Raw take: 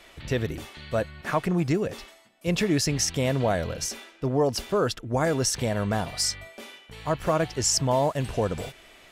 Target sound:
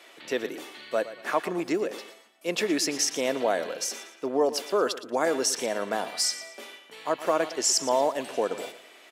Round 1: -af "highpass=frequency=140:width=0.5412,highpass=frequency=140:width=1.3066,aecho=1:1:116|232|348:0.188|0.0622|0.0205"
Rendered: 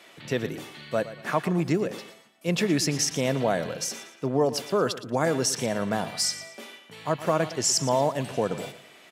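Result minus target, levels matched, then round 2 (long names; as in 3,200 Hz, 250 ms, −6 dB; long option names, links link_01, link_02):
125 Hz band +17.0 dB
-af "highpass=frequency=280:width=0.5412,highpass=frequency=280:width=1.3066,aecho=1:1:116|232|348:0.188|0.0622|0.0205"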